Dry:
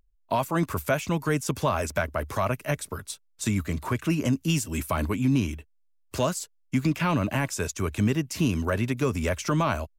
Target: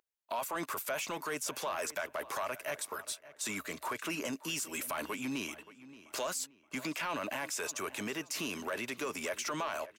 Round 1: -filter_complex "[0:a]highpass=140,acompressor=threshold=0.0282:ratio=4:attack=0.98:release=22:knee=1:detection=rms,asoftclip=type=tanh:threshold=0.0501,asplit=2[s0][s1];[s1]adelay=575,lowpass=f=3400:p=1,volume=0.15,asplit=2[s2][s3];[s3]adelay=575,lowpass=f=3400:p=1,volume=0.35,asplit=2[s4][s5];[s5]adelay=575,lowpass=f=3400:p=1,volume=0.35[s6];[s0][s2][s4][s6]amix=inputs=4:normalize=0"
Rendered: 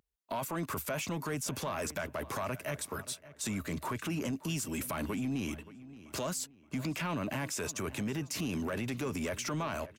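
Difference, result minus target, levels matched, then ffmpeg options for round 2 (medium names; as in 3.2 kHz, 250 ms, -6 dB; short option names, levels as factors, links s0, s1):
125 Hz band +13.0 dB
-filter_complex "[0:a]highpass=540,acompressor=threshold=0.0282:ratio=4:attack=0.98:release=22:knee=1:detection=rms,asoftclip=type=tanh:threshold=0.0501,asplit=2[s0][s1];[s1]adelay=575,lowpass=f=3400:p=1,volume=0.15,asplit=2[s2][s3];[s3]adelay=575,lowpass=f=3400:p=1,volume=0.35,asplit=2[s4][s5];[s5]adelay=575,lowpass=f=3400:p=1,volume=0.35[s6];[s0][s2][s4][s6]amix=inputs=4:normalize=0"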